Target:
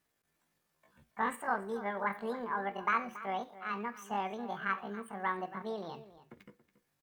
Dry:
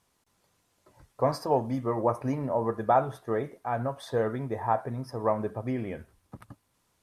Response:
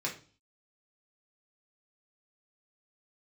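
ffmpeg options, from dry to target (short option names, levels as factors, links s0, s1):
-filter_complex "[0:a]asetrate=76340,aresample=44100,atempo=0.577676,asplit=2[s0][s1];[s1]adelay=279.9,volume=0.178,highshelf=f=4000:g=-6.3[s2];[s0][s2]amix=inputs=2:normalize=0,asplit=2[s3][s4];[1:a]atrim=start_sample=2205[s5];[s4][s5]afir=irnorm=-1:irlink=0,volume=0.133[s6];[s3][s6]amix=inputs=2:normalize=0,volume=0.376"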